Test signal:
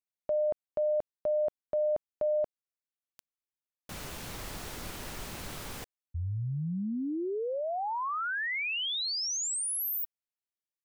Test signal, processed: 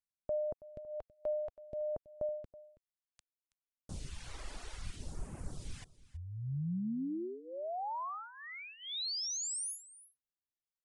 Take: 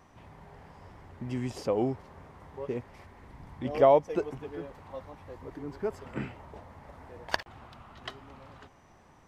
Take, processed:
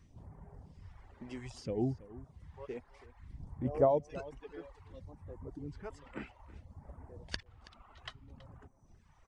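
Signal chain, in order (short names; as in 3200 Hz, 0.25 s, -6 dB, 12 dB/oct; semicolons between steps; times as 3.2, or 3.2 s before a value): reverb removal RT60 0.94 s; low shelf 170 Hz +11 dB; phaser stages 2, 0.61 Hz, lowest notch 110–3800 Hz; echo 0.326 s -18.5 dB; downsampling 22050 Hz; gain -6 dB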